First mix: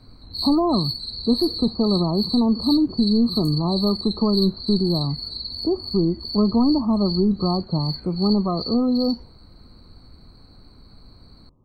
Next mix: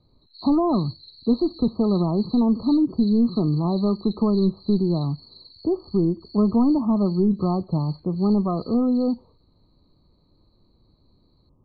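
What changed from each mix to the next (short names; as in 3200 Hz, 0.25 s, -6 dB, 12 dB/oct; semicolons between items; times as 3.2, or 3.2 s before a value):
background: add band-pass 3900 Hz, Q 5.9; master: add air absorption 360 m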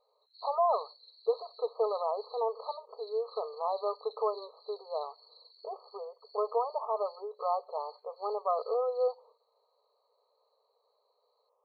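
background -10.5 dB; master: add brick-wall FIR high-pass 420 Hz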